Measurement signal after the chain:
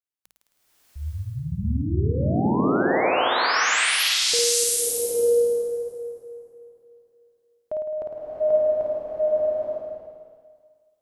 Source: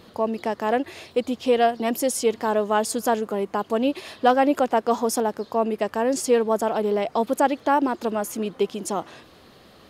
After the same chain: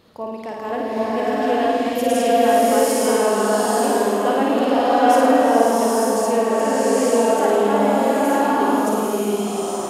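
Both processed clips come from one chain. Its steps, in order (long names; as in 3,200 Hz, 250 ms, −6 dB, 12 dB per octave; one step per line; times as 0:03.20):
mains-hum notches 60/120/180 Hz
flutter between parallel walls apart 9.1 metres, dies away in 0.93 s
slow-attack reverb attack 890 ms, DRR −8 dB
level −6 dB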